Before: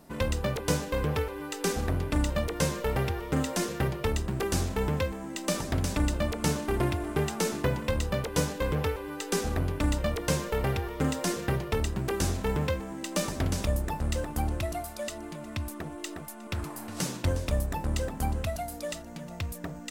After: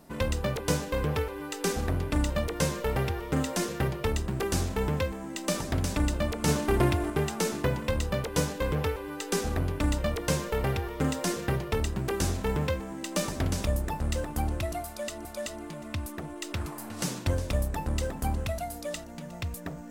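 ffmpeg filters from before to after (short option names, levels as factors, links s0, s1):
-filter_complex "[0:a]asplit=5[s0][s1][s2][s3][s4];[s0]atrim=end=6.482[s5];[s1]atrim=start=6.478:end=7.102,asetpts=PTS-STARTPTS,volume=1.5[s6];[s2]atrim=start=7.098:end=15.252[s7];[s3]atrim=start=14.868:end=16.152[s8];[s4]atrim=start=16.508[s9];[s5][s6]acrossfade=d=0.004:c1=hsin:c2=hsin[s10];[s10][s7]acrossfade=d=0.004:c1=hsin:c2=hsin[s11];[s11][s8]acrossfade=d=0.004:c1=hsin:c2=hsin[s12];[s12][s9]acrossfade=d=0.004:c1=hsin:c2=hsin"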